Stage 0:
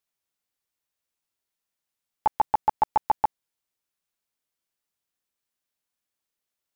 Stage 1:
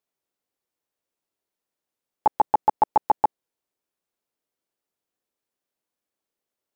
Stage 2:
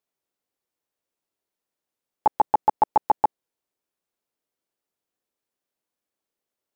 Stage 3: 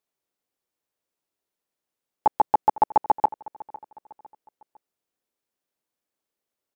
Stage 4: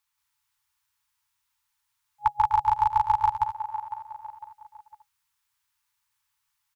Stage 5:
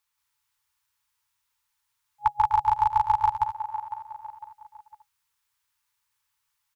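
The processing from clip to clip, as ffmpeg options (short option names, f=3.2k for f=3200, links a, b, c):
-af "equalizer=f=410:t=o:w=2.5:g=11,volume=-3.5dB"
-af anull
-af "aecho=1:1:504|1008|1512:0.106|0.0413|0.0161"
-filter_complex "[0:a]acrossover=split=450|3000[a][b][c];[b]acompressor=threshold=-28dB:ratio=6[d];[a][d][c]amix=inputs=3:normalize=0,aecho=1:1:177.8|250.7:0.891|0.316,afftfilt=real='re*(1-between(b*sr/4096,130,830))':imag='im*(1-between(b*sr/4096,130,830))':win_size=4096:overlap=0.75,volume=7dB"
-af "equalizer=f=490:w=7.9:g=14.5"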